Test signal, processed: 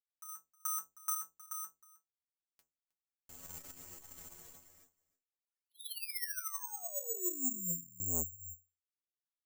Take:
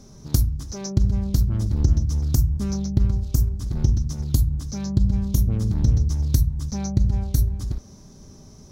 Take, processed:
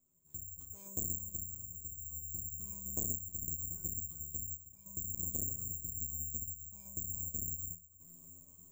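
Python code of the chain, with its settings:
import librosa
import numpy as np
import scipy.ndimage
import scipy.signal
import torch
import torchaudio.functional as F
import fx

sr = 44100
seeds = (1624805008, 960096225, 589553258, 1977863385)

y = fx.dynamic_eq(x, sr, hz=2400.0, q=3.9, threshold_db=-45.0, ratio=4.0, max_db=-6)
y = fx.tremolo_random(y, sr, seeds[0], hz=3.5, depth_pct=90)
y = fx.stiff_resonator(y, sr, f0_hz=84.0, decay_s=0.32, stiffness=0.008)
y = y + 10.0 ** (-20.5 / 20.0) * np.pad(y, (int(314 * sr / 1000.0), 0))[:len(y)]
y = (np.kron(scipy.signal.resample_poly(y, 1, 6), np.eye(6)[0]) * 6)[:len(y)]
y = fx.transformer_sat(y, sr, knee_hz=2500.0)
y = y * 10.0 ** (-9.0 / 20.0)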